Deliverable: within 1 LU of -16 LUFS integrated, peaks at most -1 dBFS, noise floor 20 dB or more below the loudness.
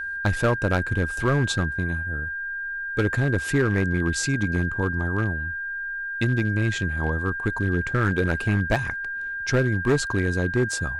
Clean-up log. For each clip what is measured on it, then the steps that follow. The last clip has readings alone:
clipped 1.3%; flat tops at -14.5 dBFS; steady tone 1600 Hz; tone level -28 dBFS; loudness -24.5 LUFS; peak -14.5 dBFS; loudness target -16.0 LUFS
-> clip repair -14.5 dBFS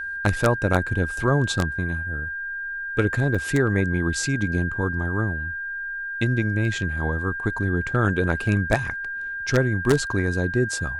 clipped 0.0%; steady tone 1600 Hz; tone level -28 dBFS
-> notch 1600 Hz, Q 30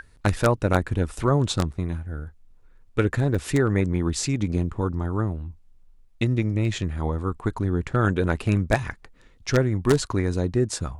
steady tone none; loudness -24.5 LUFS; peak -5.0 dBFS; loudness target -16.0 LUFS
-> gain +8.5 dB; limiter -1 dBFS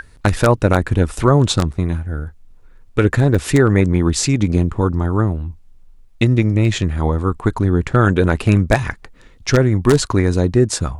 loudness -16.5 LUFS; peak -1.0 dBFS; noise floor -45 dBFS

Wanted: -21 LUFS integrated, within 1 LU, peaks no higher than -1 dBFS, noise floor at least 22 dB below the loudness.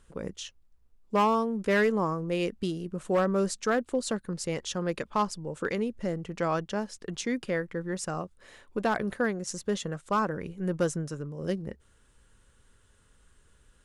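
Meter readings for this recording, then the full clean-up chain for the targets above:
clipped 0.4%; flat tops at -18.5 dBFS; loudness -30.5 LUFS; peak -18.5 dBFS; loudness target -21.0 LUFS
-> clip repair -18.5 dBFS; gain +9.5 dB

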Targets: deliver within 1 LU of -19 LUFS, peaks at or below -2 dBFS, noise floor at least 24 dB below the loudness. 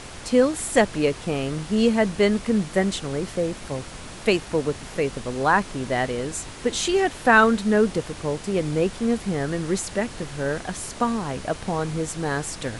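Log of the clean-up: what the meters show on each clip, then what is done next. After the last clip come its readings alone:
noise floor -39 dBFS; noise floor target -48 dBFS; loudness -23.5 LUFS; peak -3.5 dBFS; loudness target -19.0 LUFS
-> noise print and reduce 9 dB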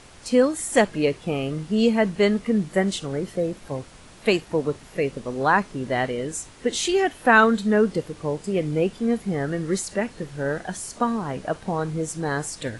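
noise floor -47 dBFS; noise floor target -48 dBFS
-> noise print and reduce 6 dB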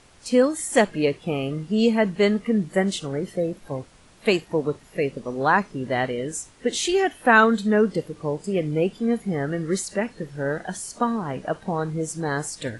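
noise floor -52 dBFS; loudness -23.5 LUFS; peak -3.5 dBFS; loudness target -19.0 LUFS
-> gain +4.5 dB; limiter -2 dBFS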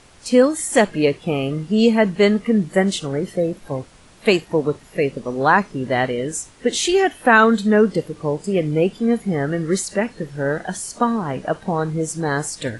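loudness -19.5 LUFS; peak -2.0 dBFS; noise floor -48 dBFS

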